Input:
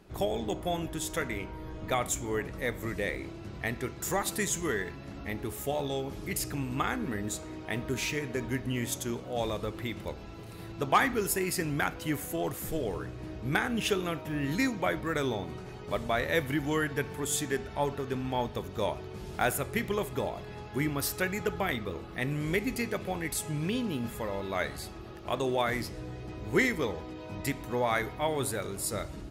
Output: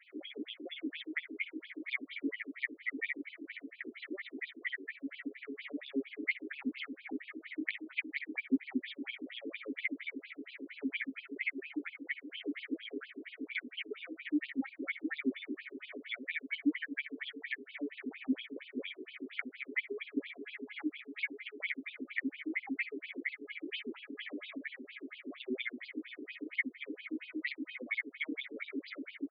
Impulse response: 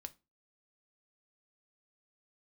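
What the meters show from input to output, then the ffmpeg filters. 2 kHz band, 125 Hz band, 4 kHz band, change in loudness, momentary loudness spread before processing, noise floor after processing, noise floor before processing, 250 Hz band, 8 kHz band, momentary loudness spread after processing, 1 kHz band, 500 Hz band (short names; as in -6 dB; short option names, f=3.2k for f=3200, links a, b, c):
-3.5 dB, under -35 dB, -7.0 dB, -7.5 dB, 10 LU, -64 dBFS, -44 dBFS, -5.0 dB, under -40 dB, 8 LU, -26.0 dB, -15.5 dB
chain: -filter_complex "[0:a]equalizer=f=1.9k:w=1.9:g=13.5,aecho=1:1:7.3:0.62,acompressor=threshold=-30dB:ratio=16,asplit=3[a][b][c];[a]bandpass=f=270:t=q:w=8,volume=0dB[d];[b]bandpass=f=2.29k:t=q:w=8,volume=-6dB[e];[c]bandpass=f=3.01k:t=q:w=8,volume=-9dB[f];[d][e][f]amix=inputs=3:normalize=0,asoftclip=type=hard:threshold=-35dB,asplit=2[g][h];[h]aecho=0:1:500|1000|1500|2000:0.211|0.093|0.0409|0.018[i];[g][i]amix=inputs=2:normalize=0,afftfilt=real='re*between(b*sr/1024,330*pow(3600/330,0.5+0.5*sin(2*PI*4.3*pts/sr))/1.41,330*pow(3600/330,0.5+0.5*sin(2*PI*4.3*pts/sr))*1.41)':imag='im*between(b*sr/1024,330*pow(3600/330,0.5+0.5*sin(2*PI*4.3*pts/sr))/1.41,330*pow(3600/330,0.5+0.5*sin(2*PI*4.3*pts/sr))*1.41)':win_size=1024:overlap=0.75,volume=14.5dB"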